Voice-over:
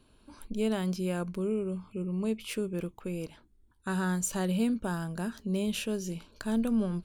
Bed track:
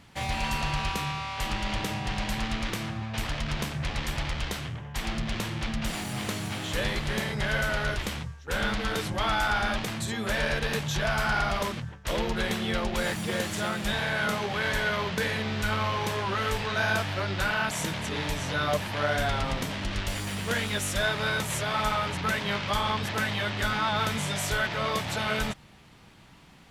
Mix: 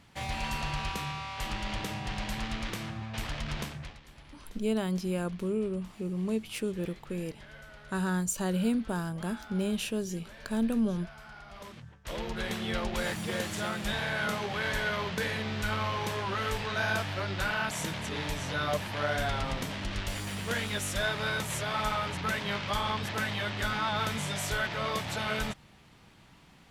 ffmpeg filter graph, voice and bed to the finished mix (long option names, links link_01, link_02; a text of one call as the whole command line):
ffmpeg -i stem1.wav -i stem2.wav -filter_complex "[0:a]adelay=4050,volume=0dB[link_01];[1:a]volume=14.5dB,afade=type=out:start_time=3.6:duration=0.39:silence=0.125893,afade=type=in:start_time=11.47:duration=1.29:silence=0.112202[link_02];[link_01][link_02]amix=inputs=2:normalize=0" out.wav